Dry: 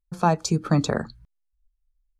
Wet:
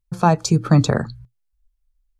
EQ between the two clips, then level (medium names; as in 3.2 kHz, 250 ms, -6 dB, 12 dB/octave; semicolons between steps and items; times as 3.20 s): peaking EQ 120 Hz +12 dB 0.4 oct; +4.0 dB